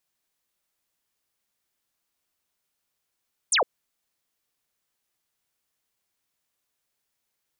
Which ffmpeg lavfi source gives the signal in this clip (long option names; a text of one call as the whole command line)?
ffmpeg -f lavfi -i "aevalsrc='0.126*clip(t/0.002,0,1)*clip((0.11-t)/0.002,0,1)*sin(2*PI*9800*0.11/log(410/9800)*(exp(log(410/9800)*t/0.11)-1))':duration=0.11:sample_rate=44100" out.wav